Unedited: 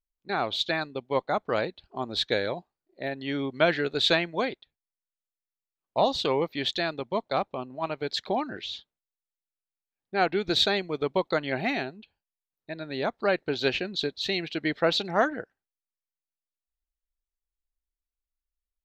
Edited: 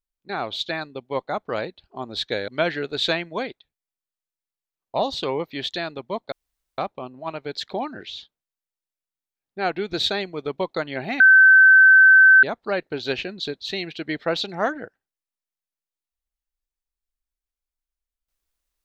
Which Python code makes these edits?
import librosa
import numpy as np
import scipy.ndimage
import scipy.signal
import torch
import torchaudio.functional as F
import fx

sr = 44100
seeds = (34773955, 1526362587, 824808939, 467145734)

y = fx.edit(x, sr, fx.cut(start_s=2.48, length_s=1.02),
    fx.insert_room_tone(at_s=7.34, length_s=0.46),
    fx.bleep(start_s=11.76, length_s=1.23, hz=1540.0, db=-8.0), tone=tone)